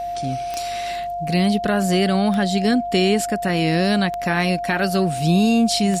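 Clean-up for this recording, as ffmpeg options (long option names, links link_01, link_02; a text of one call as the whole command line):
ffmpeg -i in.wav -af "adeclick=threshold=4,bandreject=frequency=48.8:width_type=h:width=4,bandreject=frequency=97.6:width_type=h:width=4,bandreject=frequency=146.4:width_type=h:width=4,bandreject=frequency=195.2:width_type=h:width=4,bandreject=frequency=244:width_type=h:width=4,bandreject=frequency=700:width=30" out.wav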